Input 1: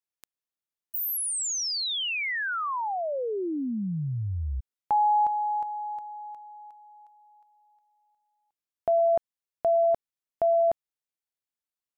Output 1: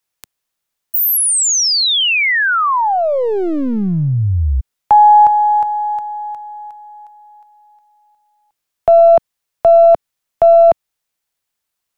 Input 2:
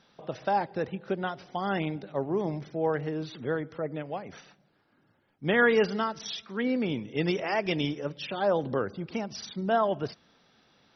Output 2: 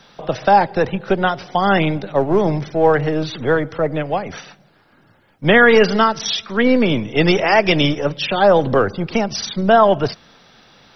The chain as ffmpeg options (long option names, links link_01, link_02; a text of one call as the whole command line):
ffmpeg -i in.wav -filter_complex "[0:a]acrossover=split=200|420|1700[link_01][link_02][link_03][link_04];[link_02]aeval=exprs='max(val(0),0)':channel_layout=same[link_05];[link_01][link_05][link_03][link_04]amix=inputs=4:normalize=0,alimiter=level_in=16.5dB:limit=-1dB:release=50:level=0:latency=1,volume=-1dB" out.wav